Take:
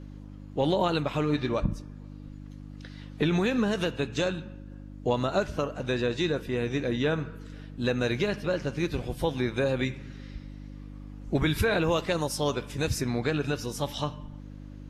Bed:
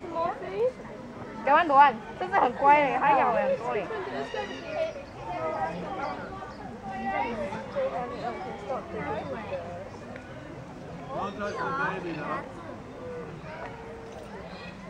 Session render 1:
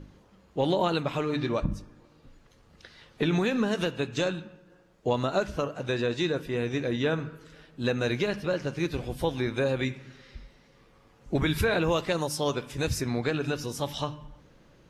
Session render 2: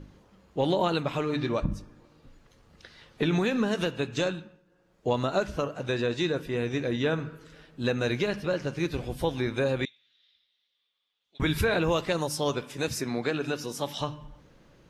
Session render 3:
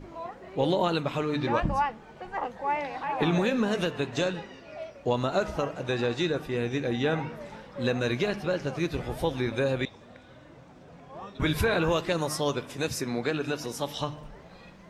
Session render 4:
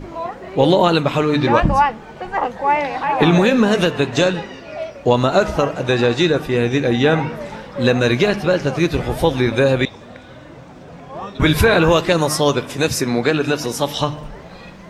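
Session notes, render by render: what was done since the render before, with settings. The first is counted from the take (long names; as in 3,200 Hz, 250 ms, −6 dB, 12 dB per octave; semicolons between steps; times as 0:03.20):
hum removal 50 Hz, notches 6
0:04.26–0:05.11: duck −9 dB, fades 0.37 s; 0:09.85–0:11.40: resonant band-pass 3,500 Hz, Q 9.1; 0:12.63–0:14.01: high-pass filter 170 Hz
mix in bed −9.5 dB
level +12 dB; brickwall limiter −2 dBFS, peak gain reduction 1 dB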